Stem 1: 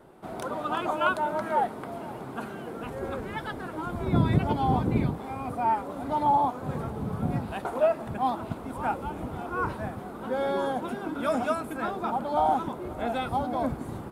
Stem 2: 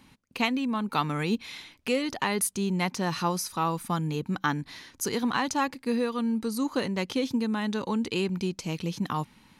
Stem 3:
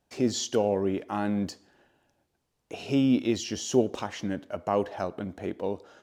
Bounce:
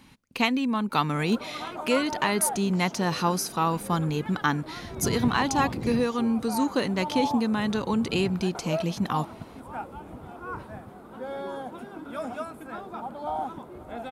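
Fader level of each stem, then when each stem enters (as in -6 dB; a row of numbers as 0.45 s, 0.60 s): -7.0 dB, +2.5 dB, -18.0 dB; 0.90 s, 0.00 s, 2.45 s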